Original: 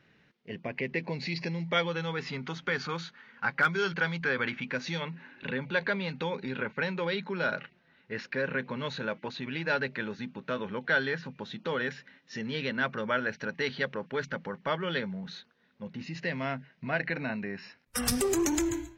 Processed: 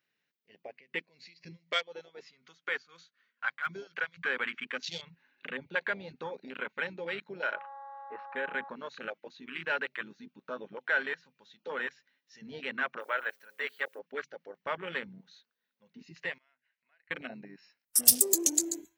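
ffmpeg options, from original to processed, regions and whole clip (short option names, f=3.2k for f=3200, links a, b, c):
-filter_complex "[0:a]asettb=1/sr,asplit=3[a][b][c];[a]atrim=end=0.734[d];[b]atrim=start=0.73:end=4.19,asetpts=PTS-STARTPTS,afade=t=in:d=0.004:c=qsin,afade=t=out:st=3.456:d=0.004:c=qsin,tremolo=f=4:d=0.72,asuperstop=centerf=880:order=4:qfactor=5[e];[c]atrim=start=4.186[f];[d][e]acrossfade=d=0.004:c1=hsin:c2=qsin[g];[g][f]acrossfade=d=0.004:c1=qsin:c2=hsin,asettb=1/sr,asplit=3[h][i][j];[h]atrim=end=7.534[k];[i]atrim=start=7.53:end=8.69,asetpts=PTS-STARTPTS,afade=t=in:d=0.004:c=qsin,afade=t=out:st=1.156:d=0.004:c=qsin,lowpass=f=2.9k:w=0.5412,lowpass=f=2.9k:w=1.3066,aeval=exprs='val(0)+0.0141*sin(2*PI*830*n/s)':c=same[l];[j]atrim=start=8.686[m];[k][l]acrossfade=d=0.004:c1=hsin:c2=qsin[n];[n][m]acrossfade=d=0.004:c1=qsin:c2=hsin,asettb=1/sr,asplit=3[o][p][q];[o]atrim=end=13.004[r];[p]atrim=start=13:end=13.99,asetpts=PTS-STARTPTS,afade=t=in:d=0.004:c=qsin,afade=t=out:st=0.986:d=0.004:c=qsin,bass=f=250:g=-15,treble=f=4k:g=-8,bandreject=f=106.5:t=h:w=4,bandreject=f=213:t=h:w=4,bandreject=f=319.5:t=h:w=4,bandreject=f=426:t=h:w=4,bandreject=f=532.5:t=h:w=4,aeval=exprs='val(0)*gte(abs(val(0)),0.00211)':c=same[s];[q]atrim=start=13.986[t];[r][s]acrossfade=d=0.004:c1=hsin:c2=qsin[u];[u][t]acrossfade=d=0.004:c1=qsin:c2=hsin,asettb=1/sr,asplit=3[v][w][x];[v]atrim=end=16.384[y];[w]atrim=start=16.38:end=17.11,asetpts=PTS-STARTPTS,afade=t=in:d=0.004:c=qsin,afade=t=out:st=0.726:d=0.004:c=qsin,acompressor=threshold=-47dB:ratio=5:attack=3.2:release=140:knee=1:detection=peak,bandpass=f=1.9k:t=q:w=0.86[z];[x]atrim=start=17.106[aa];[y][z]acrossfade=d=0.004:c1=hsin:c2=qsin[ab];[ab][aa]acrossfade=d=0.004:c1=qsin:c2=hsin,aemphasis=mode=production:type=riaa,afwtdn=0.0251,volume=-3dB"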